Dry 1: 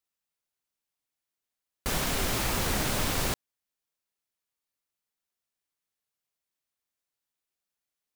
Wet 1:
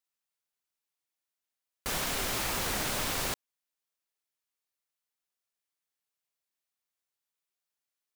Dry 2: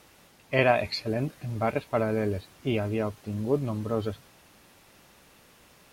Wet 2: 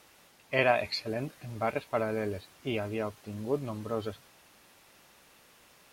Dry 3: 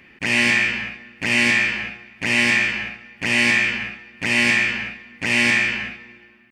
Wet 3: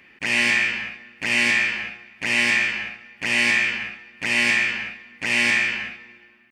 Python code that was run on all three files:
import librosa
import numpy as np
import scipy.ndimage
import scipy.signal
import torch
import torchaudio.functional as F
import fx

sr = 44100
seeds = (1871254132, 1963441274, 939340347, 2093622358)

y = fx.low_shelf(x, sr, hz=340.0, db=-7.5)
y = y * 10.0 ** (-1.5 / 20.0)